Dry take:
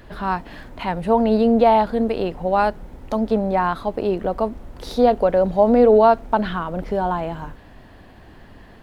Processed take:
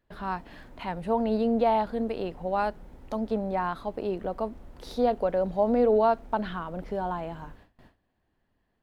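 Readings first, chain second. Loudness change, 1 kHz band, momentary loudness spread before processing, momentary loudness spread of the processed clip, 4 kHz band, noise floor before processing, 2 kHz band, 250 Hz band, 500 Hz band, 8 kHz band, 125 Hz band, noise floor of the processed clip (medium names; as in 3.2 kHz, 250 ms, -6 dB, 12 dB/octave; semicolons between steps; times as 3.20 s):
-9.0 dB, -9.0 dB, 13 LU, 13 LU, -9.0 dB, -45 dBFS, -9.0 dB, -9.0 dB, -9.0 dB, no reading, -9.0 dB, -75 dBFS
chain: gate with hold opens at -33 dBFS; hum notches 50/100 Hz; trim -9 dB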